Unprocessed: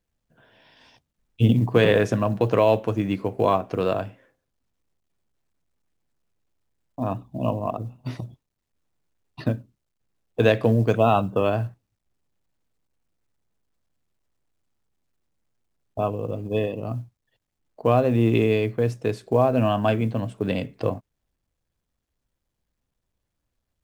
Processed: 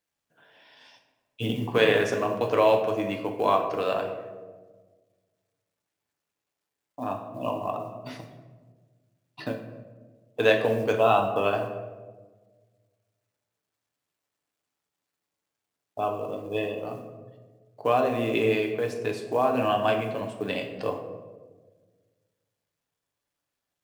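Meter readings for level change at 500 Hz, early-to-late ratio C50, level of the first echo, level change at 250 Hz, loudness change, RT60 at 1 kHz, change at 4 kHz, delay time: -2.0 dB, 7.5 dB, no echo, -7.0 dB, -3.5 dB, 1.2 s, +1.0 dB, no echo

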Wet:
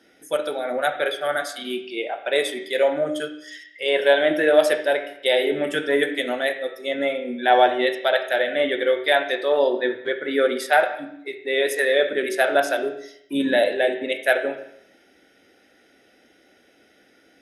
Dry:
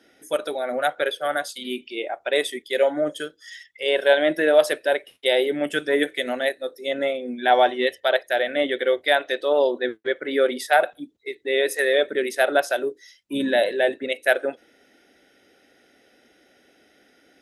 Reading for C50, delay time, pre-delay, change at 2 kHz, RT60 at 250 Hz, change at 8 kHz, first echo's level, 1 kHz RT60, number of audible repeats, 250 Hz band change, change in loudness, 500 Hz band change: 9.5 dB, no echo, 7 ms, +1.5 dB, 0.70 s, 0.0 dB, no echo, 0.70 s, no echo, +1.0 dB, +1.0 dB, +1.0 dB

